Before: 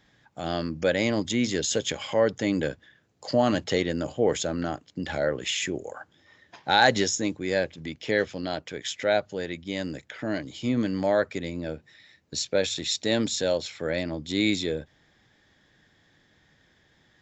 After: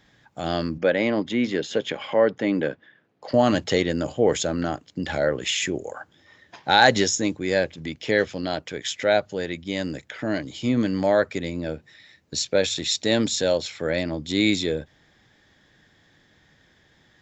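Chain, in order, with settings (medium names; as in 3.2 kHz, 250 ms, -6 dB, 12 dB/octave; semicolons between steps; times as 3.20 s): 0.78–3.34 s: band-pass 180–2700 Hz; trim +3.5 dB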